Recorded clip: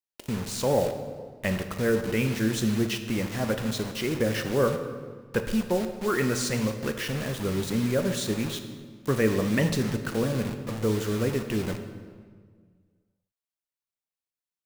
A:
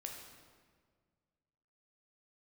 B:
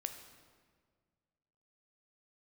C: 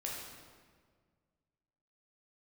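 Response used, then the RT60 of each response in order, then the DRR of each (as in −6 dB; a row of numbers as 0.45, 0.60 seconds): B; 1.7, 1.7, 1.7 seconds; 1.0, 6.5, −3.5 decibels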